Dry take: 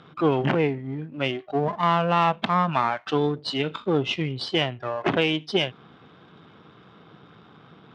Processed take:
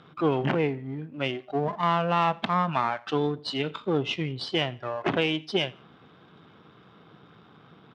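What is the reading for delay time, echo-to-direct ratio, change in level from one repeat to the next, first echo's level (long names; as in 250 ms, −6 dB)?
86 ms, −23.5 dB, −9.0 dB, −24.0 dB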